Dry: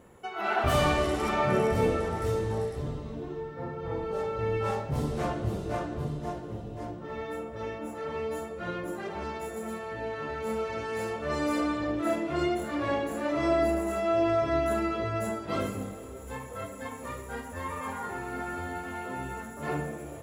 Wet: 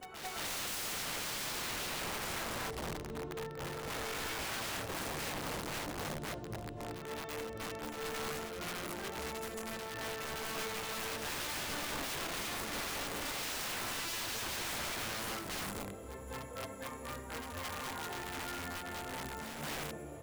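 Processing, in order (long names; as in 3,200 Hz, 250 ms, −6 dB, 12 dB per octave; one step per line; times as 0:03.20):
wrap-around overflow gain 29 dB
backwards echo 222 ms −6.5 dB
level −6 dB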